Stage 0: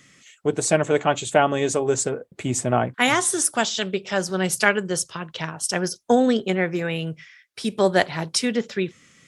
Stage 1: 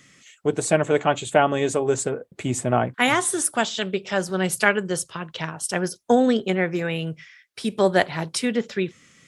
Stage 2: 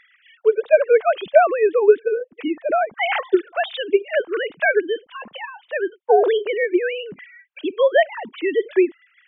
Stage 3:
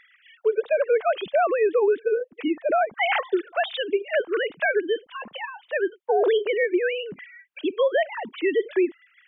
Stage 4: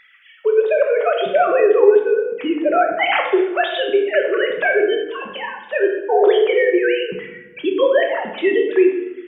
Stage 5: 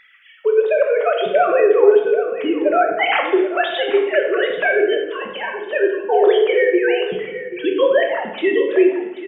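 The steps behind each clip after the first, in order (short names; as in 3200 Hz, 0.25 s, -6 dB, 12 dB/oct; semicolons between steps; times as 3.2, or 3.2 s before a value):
dynamic EQ 5700 Hz, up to -7 dB, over -41 dBFS, Q 1.6
sine-wave speech; gain +3.5 dB
limiter -12.5 dBFS, peak gain reduction 11 dB; gain -1 dB
shoebox room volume 400 m³, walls mixed, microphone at 1.1 m; gain +4 dB
echo 0.785 s -13.5 dB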